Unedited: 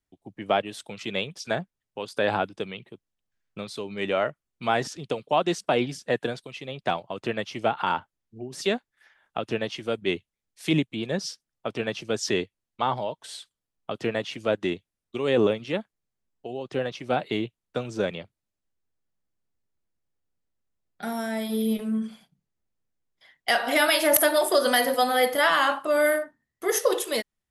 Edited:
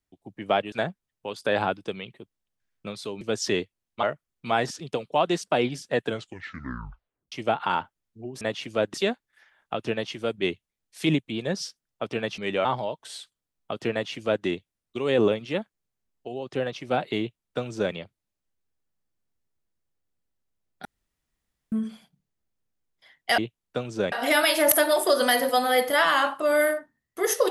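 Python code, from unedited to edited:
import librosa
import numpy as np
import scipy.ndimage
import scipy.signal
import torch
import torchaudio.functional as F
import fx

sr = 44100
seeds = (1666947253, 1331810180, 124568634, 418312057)

y = fx.edit(x, sr, fx.cut(start_s=0.72, length_s=0.72),
    fx.swap(start_s=3.93, length_s=0.27, other_s=12.02, other_length_s=0.82),
    fx.tape_stop(start_s=6.21, length_s=1.28),
    fx.duplicate(start_s=14.11, length_s=0.53, to_s=8.58),
    fx.duplicate(start_s=17.38, length_s=0.74, to_s=23.57),
    fx.room_tone_fill(start_s=21.04, length_s=0.87), tone=tone)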